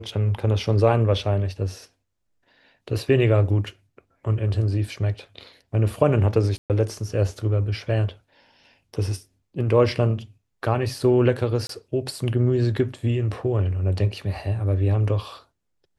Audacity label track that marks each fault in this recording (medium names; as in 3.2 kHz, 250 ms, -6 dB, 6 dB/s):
6.580000	6.700000	dropout 118 ms
11.670000	11.690000	dropout 23 ms